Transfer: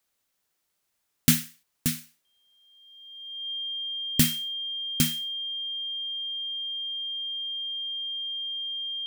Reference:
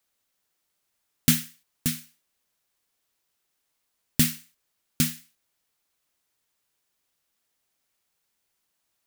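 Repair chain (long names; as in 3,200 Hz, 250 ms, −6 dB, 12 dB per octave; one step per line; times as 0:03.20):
notch filter 3,200 Hz, Q 30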